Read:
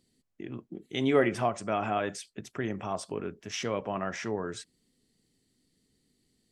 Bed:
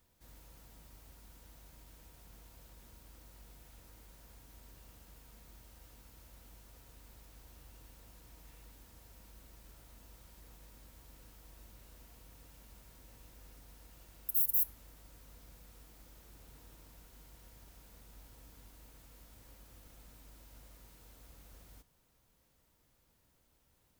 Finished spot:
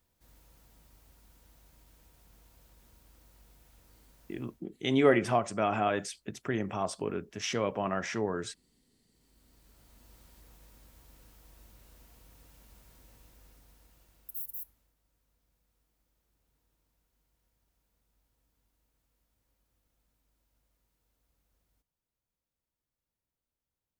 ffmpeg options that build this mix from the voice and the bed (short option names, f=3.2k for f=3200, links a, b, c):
-filter_complex "[0:a]adelay=3900,volume=1dB[a];[1:a]volume=17.5dB,afade=t=out:st=4.33:d=0.31:silence=0.125893,afade=t=in:st=9.11:d=1.07:silence=0.0891251,afade=t=out:st=13.01:d=1.94:silence=0.112202[b];[a][b]amix=inputs=2:normalize=0"